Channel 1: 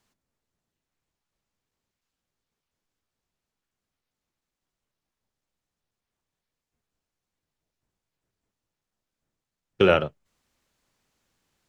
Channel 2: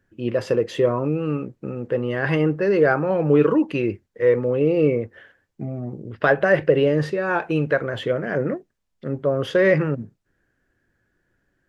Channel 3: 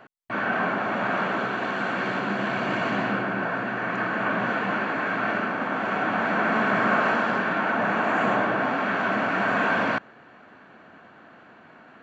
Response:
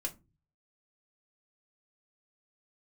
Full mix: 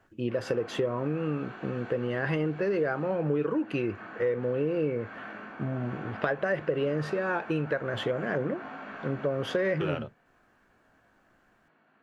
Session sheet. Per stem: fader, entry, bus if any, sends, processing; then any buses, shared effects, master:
-8.0 dB, 0.00 s, no send, dry
-2.0 dB, 0.00 s, no send, dry
-12.0 dB, 0.00 s, no send, resonator 53 Hz, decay 0.2 s, harmonics all, mix 90%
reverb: off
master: compressor 4:1, threshold -26 dBFS, peak gain reduction 11.5 dB

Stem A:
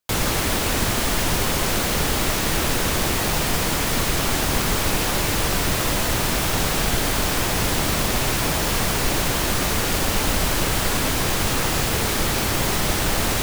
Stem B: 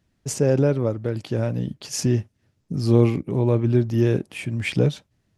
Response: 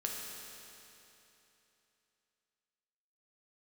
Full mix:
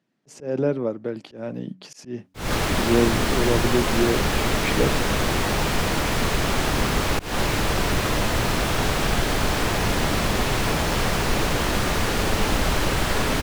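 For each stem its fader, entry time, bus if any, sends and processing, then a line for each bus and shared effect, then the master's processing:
-3.0 dB, 2.25 s, send -5.5 dB, dry
-1.0 dB, 0.00 s, no send, HPF 170 Hz 24 dB/oct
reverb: on, RT60 3.1 s, pre-delay 5 ms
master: de-hum 92.62 Hz, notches 3; auto swell 0.191 s; LPF 3500 Hz 6 dB/oct

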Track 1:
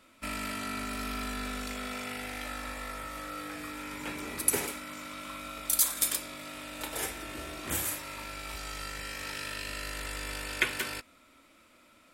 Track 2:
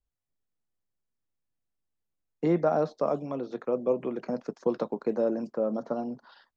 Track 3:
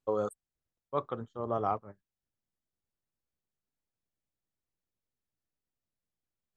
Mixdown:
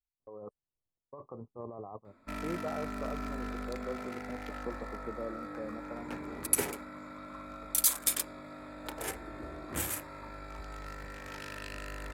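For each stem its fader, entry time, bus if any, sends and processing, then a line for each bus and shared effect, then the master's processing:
-0.5 dB, 2.05 s, no send, Wiener smoothing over 15 samples
-13.5 dB, 0.00 s, no send, dry
-8.0 dB, 0.20 s, no send, elliptic low-pass 1100 Hz; negative-ratio compressor -36 dBFS, ratio -1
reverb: off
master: dry

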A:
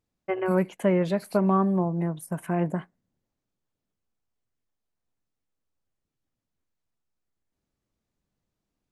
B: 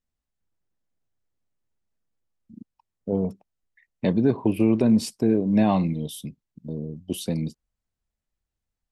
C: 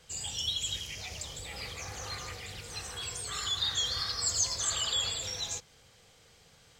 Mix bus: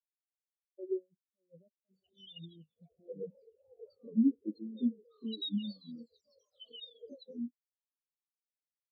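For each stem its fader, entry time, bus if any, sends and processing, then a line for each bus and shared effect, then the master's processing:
-12.5 dB, 0.50 s, no bus, no send, resonant low shelf 150 Hz +6.5 dB, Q 1.5; negative-ratio compressor -28 dBFS, ratio -0.5; flange 0.7 Hz, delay 0.8 ms, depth 6.1 ms, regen -54%
-12.5 dB, 0.00 s, bus A, no send, limiter -19 dBFS, peak gain reduction 10 dB; chorus 0.24 Hz, delay 18 ms, depth 7.6 ms
+1.5 dB, 1.80 s, bus A, no send, shaped vibrato saw down 3.4 Hz, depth 250 cents
bus A: 0.0 dB, low shelf 96 Hz -4.5 dB; limiter -24 dBFS, peak gain reduction 8 dB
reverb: off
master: ten-band EQ 125 Hz -4 dB, 250 Hz +10 dB, 500 Hz +11 dB, 2000 Hz -4 dB, 4000 Hz +4 dB, 8000 Hz -8 dB; spectral expander 4:1

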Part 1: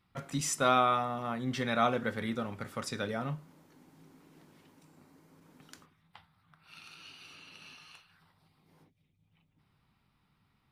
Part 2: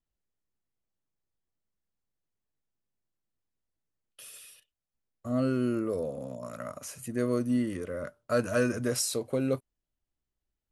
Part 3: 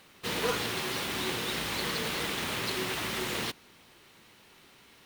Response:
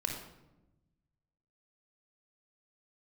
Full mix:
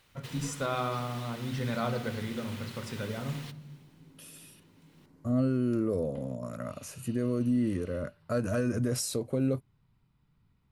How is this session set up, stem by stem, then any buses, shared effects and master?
-11.0 dB, 0.00 s, send -4.5 dB, dry
-3.0 dB, 0.00 s, no send, dry
-9.0 dB, 0.00 s, send -14 dB, compressor, threshold -35 dBFS, peak gain reduction 10.5 dB; HPF 1000 Hz 6 dB/oct; auto duck -12 dB, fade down 0.45 s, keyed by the second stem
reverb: on, RT60 1.0 s, pre-delay 25 ms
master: low shelf 350 Hz +11 dB; limiter -20 dBFS, peak gain reduction 7.5 dB

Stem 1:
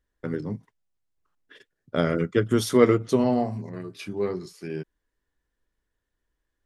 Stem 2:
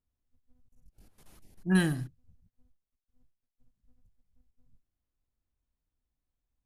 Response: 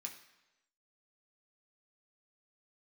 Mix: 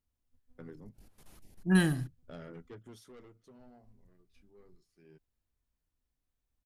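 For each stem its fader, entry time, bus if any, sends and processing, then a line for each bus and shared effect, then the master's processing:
2.56 s -8 dB -> 3.3 s -20 dB, 0.35 s, no send, soft clip -19.5 dBFS, distortion -8 dB; auto duck -12 dB, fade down 0.90 s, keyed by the second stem
0.0 dB, 0.00 s, no send, dry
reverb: off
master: dry

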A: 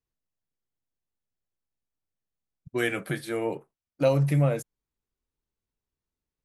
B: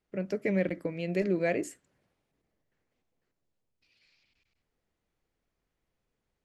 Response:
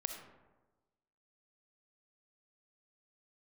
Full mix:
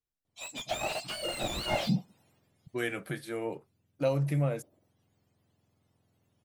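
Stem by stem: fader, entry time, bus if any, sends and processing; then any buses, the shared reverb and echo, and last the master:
-6.0 dB, 0.00 s, no send, dry
-0.5 dB, 0.25 s, no send, spectrum mirrored in octaves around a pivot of 1200 Hz; AGC gain up to 9.5 dB; slew limiter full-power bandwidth 58 Hz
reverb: off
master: dry

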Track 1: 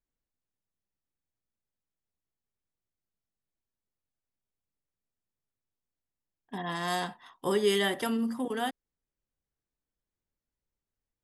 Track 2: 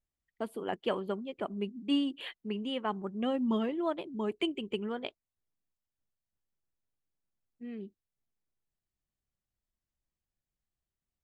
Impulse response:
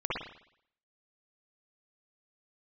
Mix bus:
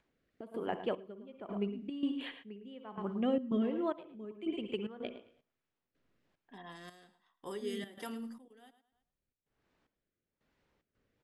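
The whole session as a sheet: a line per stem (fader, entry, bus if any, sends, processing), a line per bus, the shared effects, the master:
-10.5 dB, 0.00 s, no send, echo send -15.5 dB, HPF 190 Hz 6 dB/oct; low-pass opened by the level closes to 2700 Hz, open at -32 dBFS; upward compressor, threshold -40 dBFS
-0.5 dB, 0.00 s, send -16.5 dB, echo send -11 dB, high shelf 3400 Hz -9 dB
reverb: on, RT60 0.65 s, pre-delay 52 ms
echo: feedback echo 0.109 s, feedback 22%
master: step gate "xxx.xxx...." 111 bpm -12 dB; rotary speaker horn 1.2 Hz

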